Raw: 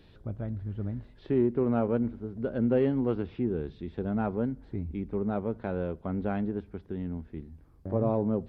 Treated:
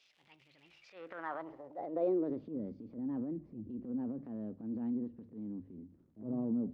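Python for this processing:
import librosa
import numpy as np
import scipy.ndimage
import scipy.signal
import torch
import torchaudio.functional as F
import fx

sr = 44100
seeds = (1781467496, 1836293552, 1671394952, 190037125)

y = fx.speed_glide(x, sr, from_pct=143, to_pct=109)
y = fx.high_shelf(y, sr, hz=3000.0, db=9.5)
y = fx.hum_notches(y, sr, base_hz=50, count=3)
y = fx.transient(y, sr, attack_db=-11, sustain_db=7)
y = fx.dmg_crackle(y, sr, seeds[0], per_s=170.0, level_db=-45.0)
y = fx.filter_sweep_bandpass(y, sr, from_hz=2900.0, to_hz=240.0, start_s=0.69, end_s=2.51, q=2.5)
y = y * librosa.db_to_amplitude(-3.0)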